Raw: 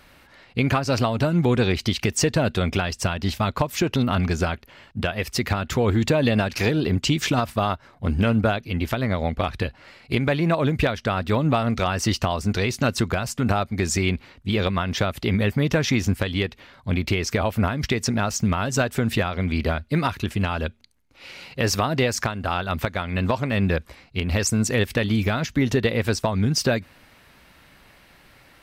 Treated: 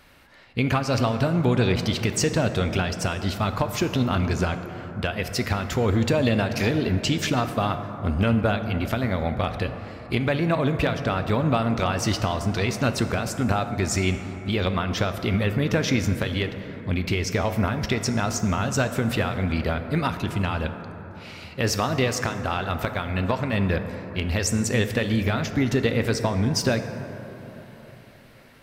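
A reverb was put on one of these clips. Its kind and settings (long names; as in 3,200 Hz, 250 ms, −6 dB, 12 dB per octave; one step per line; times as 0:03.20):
dense smooth reverb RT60 4.1 s, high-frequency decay 0.3×, DRR 7.5 dB
level −2 dB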